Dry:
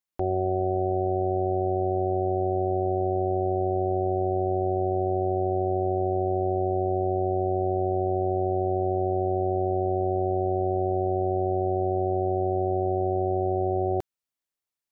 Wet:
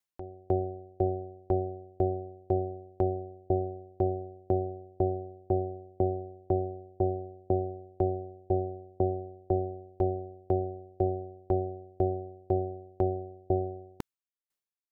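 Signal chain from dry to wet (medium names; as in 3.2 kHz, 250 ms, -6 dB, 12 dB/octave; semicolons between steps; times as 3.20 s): dynamic bell 660 Hz, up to -6 dB, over -41 dBFS, Q 2.2; sawtooth tremolo in dB decaying 2 Hz, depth 38 dB; trim +4.5 dB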